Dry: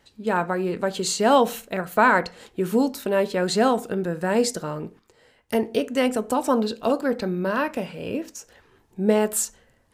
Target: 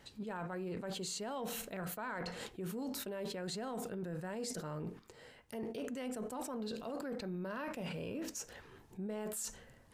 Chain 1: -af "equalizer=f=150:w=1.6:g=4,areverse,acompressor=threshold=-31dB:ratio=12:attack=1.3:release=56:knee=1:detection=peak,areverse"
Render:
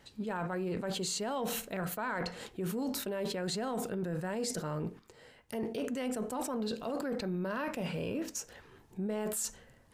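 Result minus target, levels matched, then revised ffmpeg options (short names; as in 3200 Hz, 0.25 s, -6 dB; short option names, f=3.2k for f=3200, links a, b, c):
compressor: peak gain reduction -6 dB
-af "equalizer=f=150:w=1.6:g=4,areverse,acompressor=threshold=-37.5dB:ratio=12:attack=1.3:release=56:knee=1:detection=peak,areverse"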